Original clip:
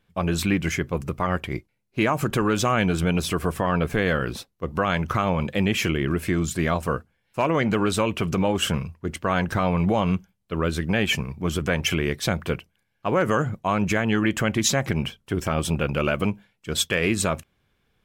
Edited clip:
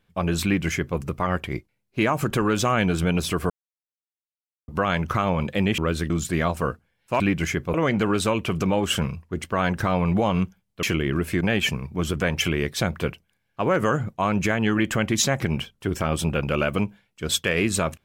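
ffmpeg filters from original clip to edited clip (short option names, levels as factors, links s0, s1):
-filter_complex "[0:a]asplit=9[s0][s1][s2][s3][s4][s5][s6][s7][s8];[s0]atrim=end=3.5,asetpts=PTS-STARTPTS,afade=t=out:st=3.496:d=0.004:c=hsin[s9];[s1]atrim=start=3.5:end=4.68,asetpts=PTS-STARTPTS,volume=0[s10];[s2]atrim=start=4.68:end=5.782,asetpts=PTS-STARTPTS,afade=t=in:d=0.004:c=hsin[s11];[s3]atrim=start=10.548:end=10.872[s12];[s4]atrim=start=6.358:end=7.462[s13];[s5]atrim=start=0.438:end=0.982[s14];[s6]atrim=start=7.458:end=10.552[s15];[s7]atrim=start=5.778:end=6.362[s16];[s8]atrim=start=10.868[s17];[s9][s10][s11]concat=n=3:v=0:a=1[s18];[s18][s12]acrossfade=d=0.004:c1=hsin:c2=hsin[s19];[s19][s13]acrossfade=d=0.004:c1=hsin:c2=hsin[s20];[s20][s14]acrossfade=d=0.004:c1=hsin:c2=hsin[s21];[s21][s15]acrossfade=d=0.004:c1=hsin:c2=hsin[s22];[s22][s16]acrossfade=d=0.004:c1=hsin:c2=hsin[s23];[s23][s17]acrossfade=d=0.004:c1=hsin:c2=hsin"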